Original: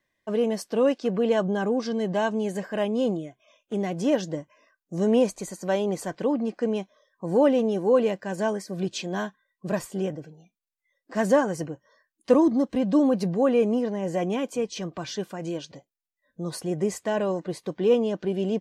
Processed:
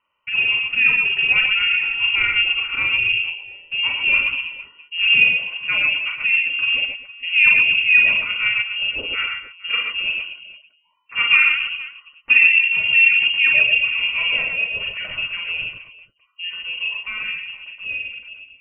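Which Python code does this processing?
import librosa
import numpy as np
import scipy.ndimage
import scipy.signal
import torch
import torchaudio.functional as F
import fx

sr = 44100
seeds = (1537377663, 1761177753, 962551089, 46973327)

y = fx.fade_out_tail(x, sr, length_s=3.16)
y = fx.freq_invert(y, sr, carrier_hz=3000)
y = fx.echo_multitap(y, sr, ms=(41, 51, 117, 135, 255, 463), db=(-5.0, -6.5, -8.0, -4.5, -14.0, -18.0))
y = y * 10.0 ** (3.0 / 20.0)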